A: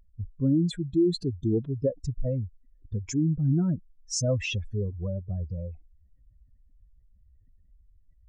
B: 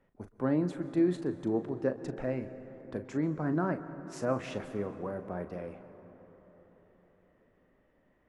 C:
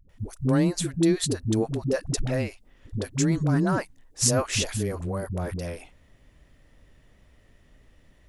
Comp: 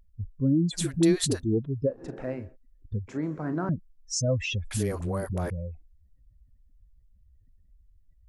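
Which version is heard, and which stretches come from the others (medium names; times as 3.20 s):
A
0.77–1.44 s: from C, crossfade 0.10 s
1.97–2.45 s: from B, crossfade 0.24 s
3.08–3.69 s: from B
4.71–5.50 s: from C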